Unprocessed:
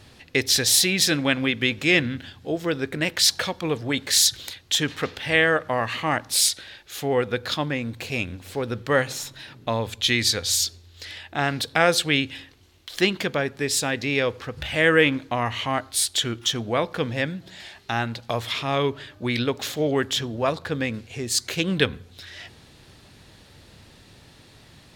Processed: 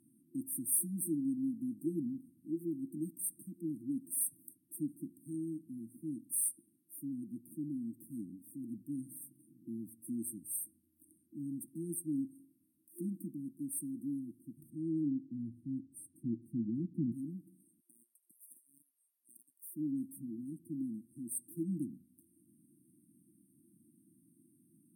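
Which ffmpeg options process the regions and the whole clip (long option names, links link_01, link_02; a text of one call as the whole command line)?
ffmpeg -i in.wav -filter_complex "[0:a]asettb=1/sr,asplit=3[link_01][link_02][link_03];[link_01]atrim=end=14.704[link_04];[link_02]atrim=start=14.7:end=17.12,asetpts=PTS-STARTPTS,afade=type=in:duration=0.004:curve=qsin,afade=type=out:start_time=2.416:duration=0.004:curve=qsin,lowpass=frequency=1200:poles=1,asubboost=boost=7.5:cutoff=230[link_05];[link_03]atrim=start=17.116[link_06];[link_04][link_05]acrossfade=duration=0.004:curve1=hsin:curve2=qsin[link_07];[link_07][link_06]acrossfade=duration=0.004:curve1=qsin:curve2=hsin,asettb=1/sr,asplit=3[link_08][link_09][link_10];[link_08]atrim=end=17.804[link_11];[link_09]atrim=start=17.8:end=19.76,asetpts=PTS-STARTPTS,afade=type=in:duration=0.004:curve=qsin,afade=type=out:start_time=1.956:duration=0.004:curve=qsin,highpass=frequency=1400:width=0.5412,highpass=frequency=1400:width=1.3066,asoftclip=type=hard:threshold=-21.5dB[link_12];[link_10]atrim=start=19.756[link_13];[link_11][link_12]acrossfade=duration=0.004:curve1=hsin:curve2=qsin[link_14];[link_14][link_13]acrossfade=duration=0.004:curve1=qsin:curve2=hsin,afftfilt=real='re*(1-between(b*sr/4096,350,8400))':imag='im*(1-between(b*sr/4096,350,8400))':win_size=4096:overlap=0.75,highpass=frequency=190:width=0.5412,highpass=frequency=190:width=1.3066,volume=-8dB" out.wav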